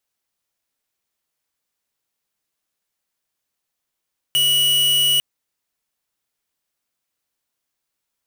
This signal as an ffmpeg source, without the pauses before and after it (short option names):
-f lavfi -i "aevalsrc='0.15*(2*lt(mod(2930*t,1),0.5)-1)':d=0.85:s=44100"